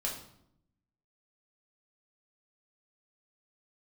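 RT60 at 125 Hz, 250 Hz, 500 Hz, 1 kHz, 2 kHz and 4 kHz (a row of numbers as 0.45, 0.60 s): 1.2, 1.1, 0.80, 0.70, 0.55, 0.55 s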